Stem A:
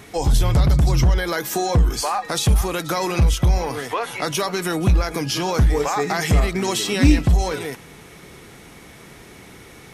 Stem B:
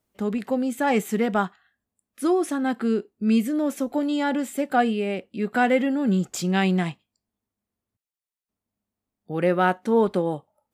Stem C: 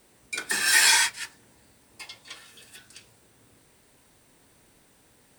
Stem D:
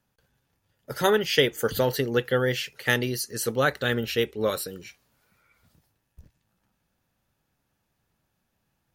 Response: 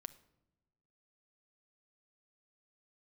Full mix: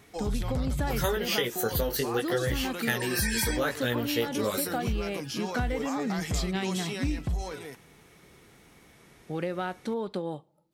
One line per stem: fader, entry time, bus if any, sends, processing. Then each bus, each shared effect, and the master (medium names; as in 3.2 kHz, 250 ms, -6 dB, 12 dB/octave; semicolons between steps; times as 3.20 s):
-13.0 dB, 0.00 s, no send, none
-4.5 dB, 0.00 s, send -10 dB, peaking EQ 4.1 kHz +9 dB 0.73 oct; compression 6:1, threshold -25 dBFS, peak gain reduction 10.5 dB
-7.0 dB, 2.50 s, no send, loudest bins only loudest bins 64
+1.5 dB, 0.00 s, no send, treble shelf 8.9 kHz +11 dB; chorus 0.75 Hz, delay 16.5 ms, depth 3.3 ms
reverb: on, pre-delay 6 ms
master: compression 6:1, threshold -24 dBFS, peak gain reduction 8.5 dB